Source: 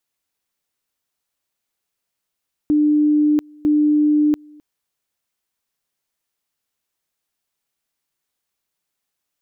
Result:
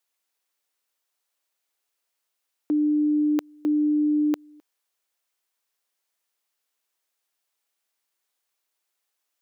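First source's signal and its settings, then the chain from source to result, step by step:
two-level tone 299 Hz -12 dBFS, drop 28.5 dB, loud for 0.69 s, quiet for 0.26 s, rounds 2
HPF 400 Hz 12 dB/oct

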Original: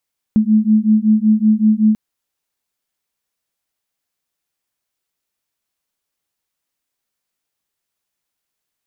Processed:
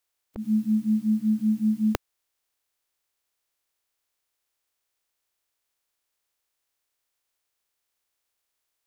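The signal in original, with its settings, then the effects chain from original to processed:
beating tones 213 Hz, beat 5.3 Hz, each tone -13 dBFS 1.59 s
spectral limiter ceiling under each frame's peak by 27 dB; bell 180 Hz -13.5 dB 0.88 oct; auto swell 0.11 s

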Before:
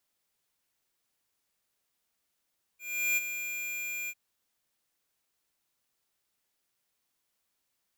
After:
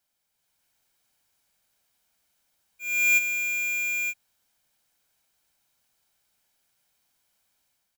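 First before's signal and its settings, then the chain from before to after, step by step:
ADSR square 2400 Hz, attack 0.379 s, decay 27 ms, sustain -9.5 dB, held 1.30 s, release 48 ms -26.5 dBFS
comb 1.3 ms, depth 36%; AGC gain up to 6.5 dB

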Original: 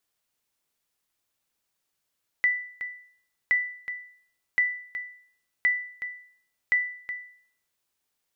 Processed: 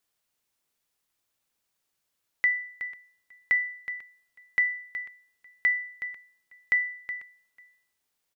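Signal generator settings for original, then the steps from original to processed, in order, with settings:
sonar ping 1980 Hz, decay 0.56 s, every 1.07 s, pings 5, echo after 0.37 s, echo -11 dB -15.5 dBFS
echo 0.494 s -20 dB

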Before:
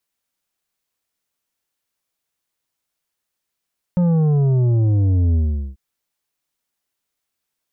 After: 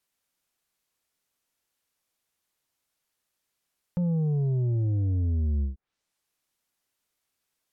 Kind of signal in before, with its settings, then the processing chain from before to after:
sub drop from 180 Hz, over 1.79 s, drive 8 dB, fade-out 0.41 s, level -14 dB
limiter -23.5 dBFS; treble ducked by the level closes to 570 Hz, closed at -28.5 dBFS

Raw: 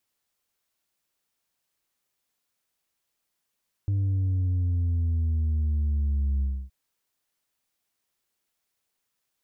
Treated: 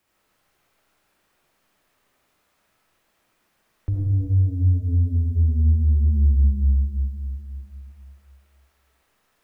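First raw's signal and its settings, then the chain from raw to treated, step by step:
sub drop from 100 Hz, over 2.82 s, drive 3 dB, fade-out 0.28 s, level -22.5 dB
bell 62 Hz +6.5 dB 0.38 oct; digital reverb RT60 2.1 s, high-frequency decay 0.95×, pre-delay 20 ms, DRR -6.5 dB; three-band squash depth 40%

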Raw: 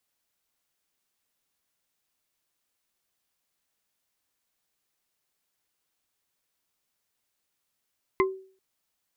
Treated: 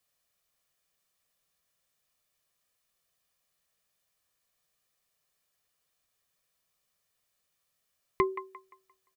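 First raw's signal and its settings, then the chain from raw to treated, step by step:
wood hit bar, length 0.39 s, lowest mode 381 Hz, modes 3, decay 0.45 s, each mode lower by 1 dB, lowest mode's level -18 dB
bell 160 Hz +4.5 dB 0.3 oct; comb 1.7 ms, depth 43%; band-limited delay 0.174 s, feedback 34%, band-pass 1200 Hz, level -10 dB

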